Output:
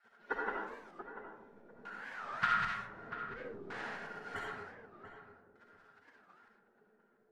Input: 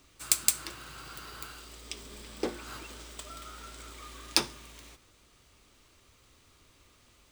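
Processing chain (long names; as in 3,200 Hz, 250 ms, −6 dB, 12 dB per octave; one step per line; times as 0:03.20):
0:02.11–0:04.36: feedback delay that plays each chunk backwards 143 ms, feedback 44%, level −3 dB
gate on every frequency bin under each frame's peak −25 dB weak
parametric band 4,000 Hz +3 dB
hollow resonant body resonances 240/420/1,400 Hz, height 11 dB, ringing for 45 ms
auto-filter low-pass square 0.54 Hz 390–1,500 Hz
feedback echo with a low-pass in the loop 690 ms, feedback 22%, low-pass 1,400 Hz, level −9 dB
convolution reverb RT60 1.1 s, pre-delay 25 ms, DRR −2 dB
wow of a warped record 45 rpm, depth 250 cents
level +12.5 dB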